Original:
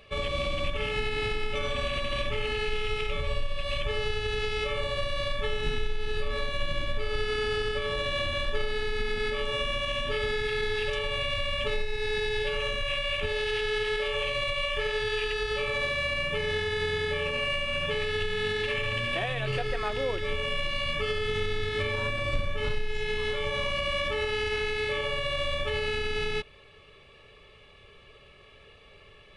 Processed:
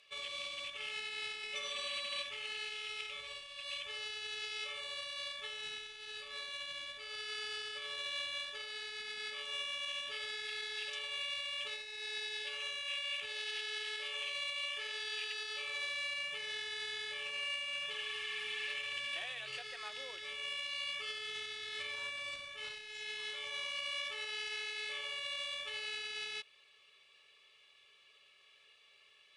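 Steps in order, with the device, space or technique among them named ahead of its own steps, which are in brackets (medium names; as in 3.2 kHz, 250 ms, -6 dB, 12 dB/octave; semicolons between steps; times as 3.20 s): 17.96–18.67 s: spectral replace 1.1–8.7 kHz; piezo pickup straight into a mixer (low-pass 7.4 kHz 12 dB/octave; differentiator); 1.43–2.23 s: comb 5.1 ms, depth 80%; trim +1 dB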